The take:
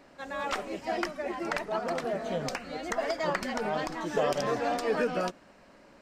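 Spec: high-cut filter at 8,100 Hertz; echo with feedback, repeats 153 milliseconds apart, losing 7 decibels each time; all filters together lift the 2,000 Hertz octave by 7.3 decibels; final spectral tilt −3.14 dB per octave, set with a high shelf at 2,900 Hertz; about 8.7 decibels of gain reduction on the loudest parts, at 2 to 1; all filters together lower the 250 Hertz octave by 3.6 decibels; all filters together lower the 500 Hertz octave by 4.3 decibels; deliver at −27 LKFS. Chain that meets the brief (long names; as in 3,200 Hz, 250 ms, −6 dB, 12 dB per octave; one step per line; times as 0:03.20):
low-pass filter 8,100 Hz
parametric band 250 Hz −3 dB
parametric band 500 Hz −5.5 dB
parametric band 2,000 Hz +8 dB
high-shelf EQ 2,900 Hz +3.5 dB
downward compressor 2 to 1, threshold −39 dBFS
repeating echo 153 ms, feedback 45%, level −7 dB
level +9.5 dB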